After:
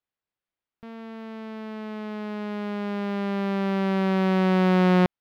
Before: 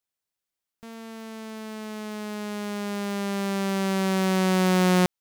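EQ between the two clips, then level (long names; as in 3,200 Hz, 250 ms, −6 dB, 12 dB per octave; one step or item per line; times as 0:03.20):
high-frequency loss of the air 360 metres
high-shelf EQ 6,800 Hz +9 dB
+2.0 dB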